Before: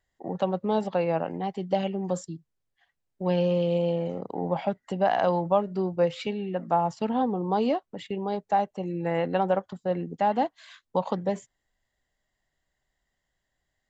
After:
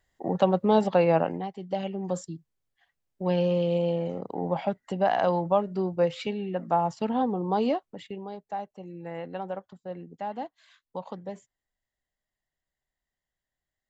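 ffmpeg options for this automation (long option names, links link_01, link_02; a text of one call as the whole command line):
ffmpeg -i in.wav -af "volume=11.5dB,afade=type=out:start_time=1.22:duration=0.29:silence=0.251189,afade=type=in:start_time=1.51:duration=0.73:silence=0.446684,afade=type=out:start_time=7.69:duration=0.65:silence=0.334965" out.wav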